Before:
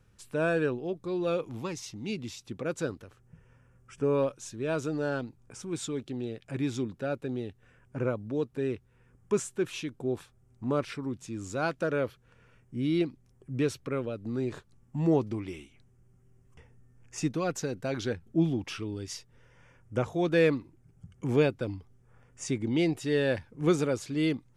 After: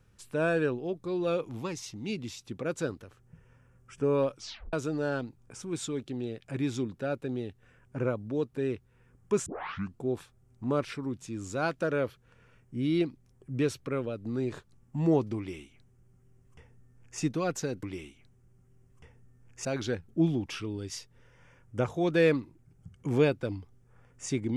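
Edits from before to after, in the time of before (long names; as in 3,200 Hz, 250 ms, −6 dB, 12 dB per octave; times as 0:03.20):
0:04.36: tape stop 0.37 s
0:09.46: tape start 0.56 s
0:15.38–0:17.20: duplicate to 0:17.83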